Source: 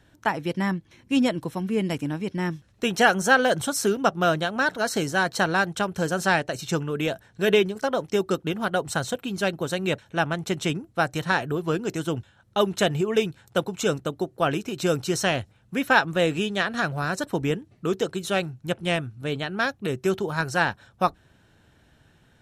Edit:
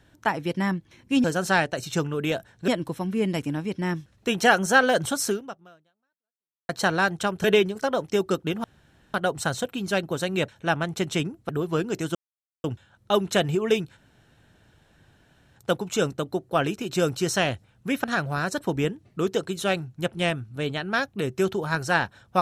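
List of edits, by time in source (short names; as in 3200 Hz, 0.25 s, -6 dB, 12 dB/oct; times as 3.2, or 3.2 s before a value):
3.83–5.25 fade out exponential
6–7.44 move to 1.24
8.64 insert room tone 0.50 s
10.99–11.44 cut
12.1 insert silence 0.49 s
13.43 insert room tone 1.59 s
15.91–16.7 cut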